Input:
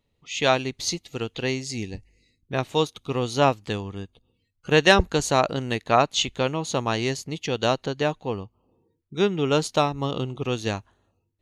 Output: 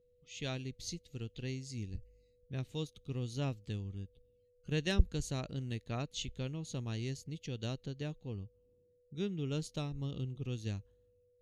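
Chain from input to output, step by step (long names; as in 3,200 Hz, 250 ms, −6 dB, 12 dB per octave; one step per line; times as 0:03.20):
steady tone 490 Hz −48 dBFS
guitar amp tone stack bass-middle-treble 10-0-1
level +5 dB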